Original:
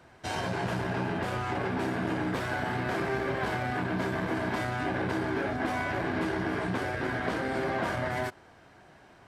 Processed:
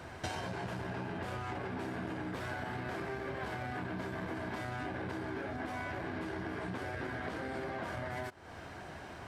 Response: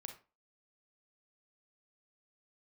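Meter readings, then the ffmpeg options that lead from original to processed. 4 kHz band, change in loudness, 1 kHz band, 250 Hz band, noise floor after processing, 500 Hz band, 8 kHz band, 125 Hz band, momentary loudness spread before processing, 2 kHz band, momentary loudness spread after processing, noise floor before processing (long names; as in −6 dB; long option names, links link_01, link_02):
−8.0 dB, −9.0 dB, −8.5 dB, −9.0 dB, −48 dBFS, −9.0 dB, −7.0 dB, −7.5 dB, 1 LU, −8.5 dB, 2 LU, −56 dBFS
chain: -af "equalizer=frequency=80:width_type=o:width=0.31:gain=8,acompressor=threshold=-44dB:ratio=16,volume=8dB"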